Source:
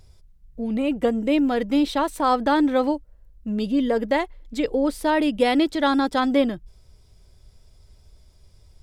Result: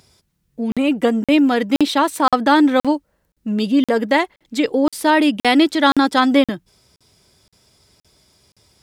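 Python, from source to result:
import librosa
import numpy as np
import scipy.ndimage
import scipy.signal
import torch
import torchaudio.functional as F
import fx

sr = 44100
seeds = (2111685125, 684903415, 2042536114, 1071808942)

y = scipy.signal.sosfilt(scipy.signal.butter(2, 210.0, 'highpass', fs=sr, output='sos'), x)
y = fx.peak_eq(y, sr, hz=540.0, db=-5.5, octaves=1.2)
y = fx.buffer_crackle(y, sr, first_s=0.72, period_s=0.52, block=2048, kind='zero')
y = y * 10.0 ** (9.0 / 20.0)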